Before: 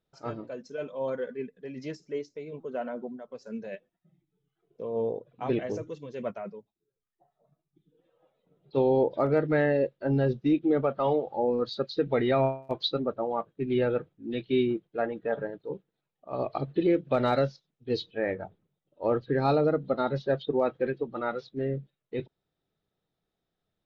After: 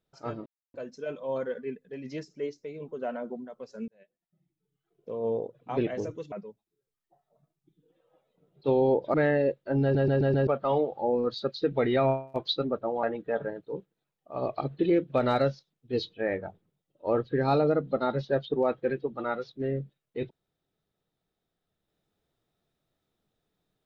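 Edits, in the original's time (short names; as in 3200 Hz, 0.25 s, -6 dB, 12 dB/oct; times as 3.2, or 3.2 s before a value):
0.46 insert silence 0.28 s
3.6–4.86 fade in
6.04–6.41 cut
9.23–9.49 cut
10.17 stutter in place 0.13 s, 5 plays
13.38–15 cut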